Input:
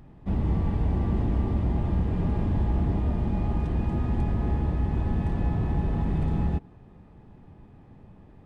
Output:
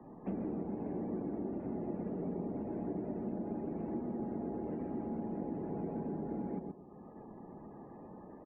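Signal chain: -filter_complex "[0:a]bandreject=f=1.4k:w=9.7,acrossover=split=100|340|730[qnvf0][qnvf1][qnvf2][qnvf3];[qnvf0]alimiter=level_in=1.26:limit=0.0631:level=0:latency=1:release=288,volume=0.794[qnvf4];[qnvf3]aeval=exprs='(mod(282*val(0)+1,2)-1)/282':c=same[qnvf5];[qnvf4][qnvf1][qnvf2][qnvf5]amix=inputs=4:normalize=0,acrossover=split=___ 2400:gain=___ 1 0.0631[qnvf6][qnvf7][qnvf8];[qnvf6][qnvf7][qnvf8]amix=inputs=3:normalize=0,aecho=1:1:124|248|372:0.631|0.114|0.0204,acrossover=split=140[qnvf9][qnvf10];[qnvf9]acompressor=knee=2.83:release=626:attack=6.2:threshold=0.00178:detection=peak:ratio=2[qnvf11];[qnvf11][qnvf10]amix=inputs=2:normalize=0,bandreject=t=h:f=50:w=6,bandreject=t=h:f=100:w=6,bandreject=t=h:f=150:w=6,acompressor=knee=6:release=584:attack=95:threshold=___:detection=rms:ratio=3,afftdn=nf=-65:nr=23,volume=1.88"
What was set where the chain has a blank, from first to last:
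210, 0.0794, 0.00562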